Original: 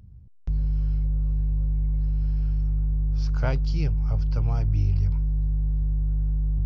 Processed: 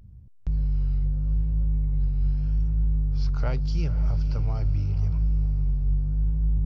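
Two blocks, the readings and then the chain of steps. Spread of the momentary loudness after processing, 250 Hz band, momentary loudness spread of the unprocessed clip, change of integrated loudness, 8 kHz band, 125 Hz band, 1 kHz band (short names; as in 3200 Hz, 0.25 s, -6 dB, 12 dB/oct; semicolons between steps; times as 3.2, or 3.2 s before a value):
1 LU, 0.0 dB, 3 LU, -0.5 dB, n/a, -0.5 dB, -3.0 dB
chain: limiter -18 dBFS, peak gain reduction 6.5 dB; vibrato 0.82 Hz 83 cents; diffused feedback echo 0.517 s, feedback 43%, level -13 dB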